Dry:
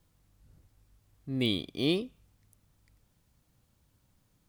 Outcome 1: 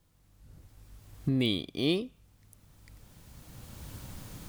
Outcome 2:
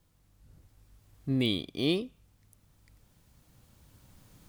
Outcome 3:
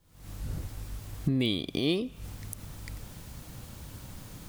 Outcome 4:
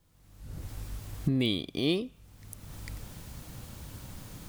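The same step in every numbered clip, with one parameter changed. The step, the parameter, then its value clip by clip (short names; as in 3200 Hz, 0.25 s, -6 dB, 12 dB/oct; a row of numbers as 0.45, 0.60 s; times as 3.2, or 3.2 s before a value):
recorder AGC, rising by: 13, 5.4, 85, 35 dB/s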